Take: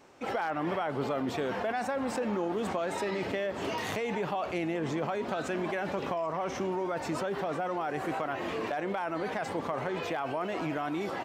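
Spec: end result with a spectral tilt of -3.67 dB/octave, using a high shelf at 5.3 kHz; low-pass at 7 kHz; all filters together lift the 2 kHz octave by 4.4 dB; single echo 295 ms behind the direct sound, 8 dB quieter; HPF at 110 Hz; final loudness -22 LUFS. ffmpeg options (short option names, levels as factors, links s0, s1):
-af "highpass=110,lowpass=7000,equalizer=f=2000:t=o:g=6.5,highshelf=f=5300:g=-7,aecho=1:1:295:0.398,volume=2.82"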